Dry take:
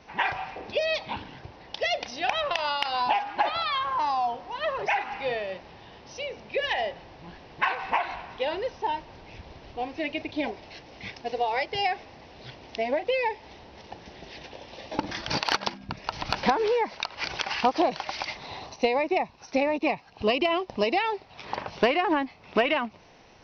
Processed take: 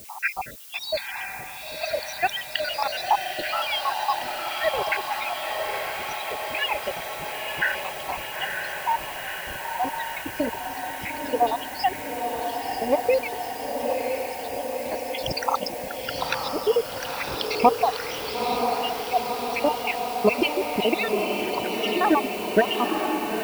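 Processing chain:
time-frequency cells dropped at random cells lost 79%
background noise blue −51 dBFS
feedback delay with all-pass diffusion 954 ms, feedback 73%, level −4 dB
level +6.5 dB

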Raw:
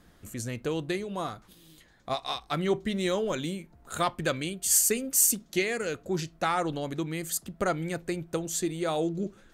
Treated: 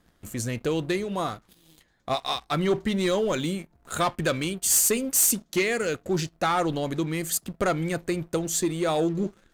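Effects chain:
leveller curve on the samples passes 2
level −2.5 dB

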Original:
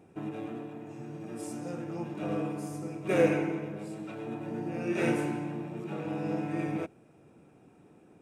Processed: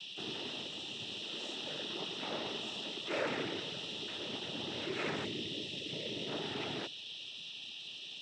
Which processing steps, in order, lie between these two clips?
steady tone 3,500 Hz −40 dBFS
dead-zone distortion −47 dBFS
0:01.12–0:03.22: high-pass filter 210 Hz 12 dB per octave
soft clipping −30 dBFS, distortion −7 dB
tilt shelving filter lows −6 dB, about 810 Hz
0:05.24–0:06.28: gain on a spectral selection 610–2,300 Hz −15 dB
high-frequency loss of the air 100 metres
cochlear-implant simulation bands 12
level that may rise only so fast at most 130 dB per second

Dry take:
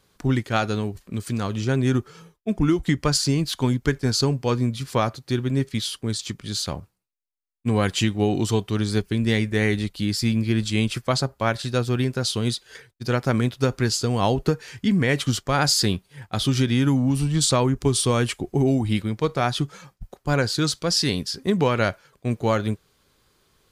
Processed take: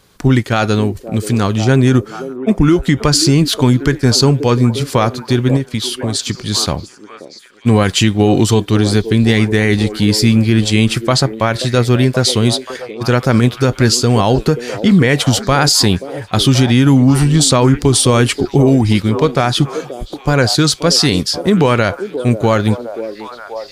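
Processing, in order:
on a send: echo through a band-pass that steps 530 ms, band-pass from 400 Hz, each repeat 0.7 octaves, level −9.5 dB
0:05.56–0:06.15: on the sum: downward compressor 6 to 1, threshold −26 dBFS, peak gain reduction 8.5 dB
boost into a limiter +12.5 dB
level −1 dB

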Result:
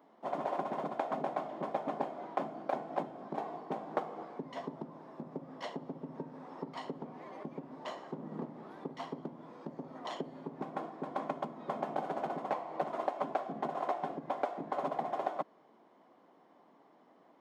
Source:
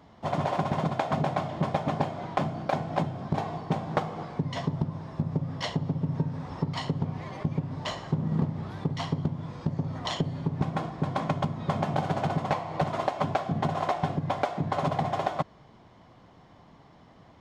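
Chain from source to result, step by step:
high-pass filter 260 Hz 24 dB per octave
parametric band 5,000 Hz −11.5 dB 2.8 octaves
level −4.5 dB

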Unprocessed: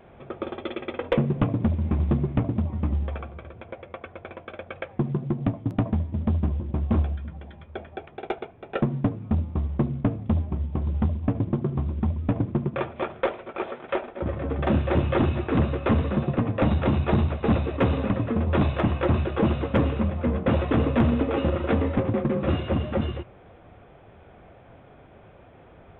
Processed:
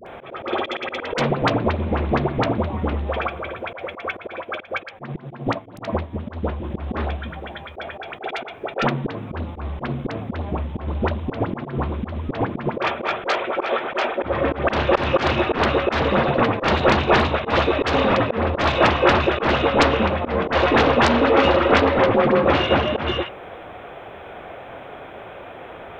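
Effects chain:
sine wavefolder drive 6 dB, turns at −13.5 dBFS
bass and treble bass −8 dB, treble +2 dB
all-pass dispersion highs, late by 65 ms, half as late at 970 Hz
volume swells 118 ms
low-shelf EQ 380 Hz −7.5 dB
0:04.36–0:06.64: expander for the loud parts 1.5 to 1, over −42 dBFS
level +7.5 dB

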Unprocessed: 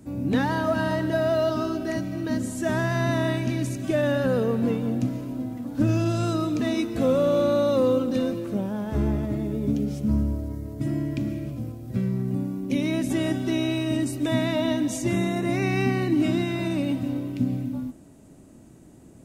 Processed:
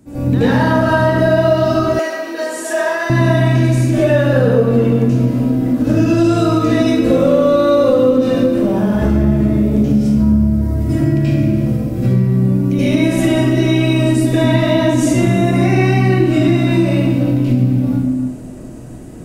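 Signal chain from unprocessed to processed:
convolution reverb RT60 1.2 s, pre-delay 76 ms, DRR −16 dB
downward compressor 3 to 1, threshold −11 dBFS, peak gain reduction 9.5 dB
0:01.99–0:03.10: high-pass filter 450 Hz 24 dB per octave

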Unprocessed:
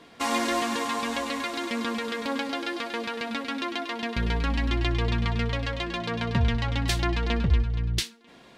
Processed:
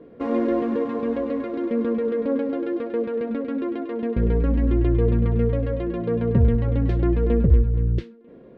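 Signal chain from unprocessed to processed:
low-pass filter 1,200 Hz 12 dB per octave
low shelf with overshoot 630 Hz +7.5 dB, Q 3
level −1.5 dB

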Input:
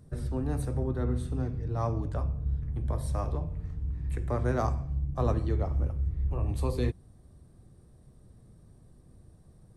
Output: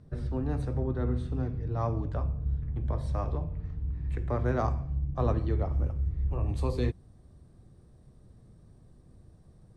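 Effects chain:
low-pass filter 4,500 Hz 12 dB per octave, from 0:05.72 7,400 Hz

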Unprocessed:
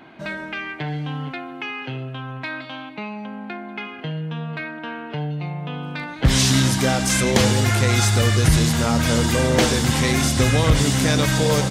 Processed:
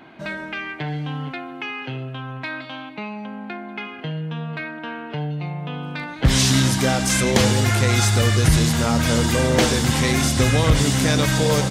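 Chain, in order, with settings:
0:08.78–0:10.52: surface crackle 56 per second −37 dBFS

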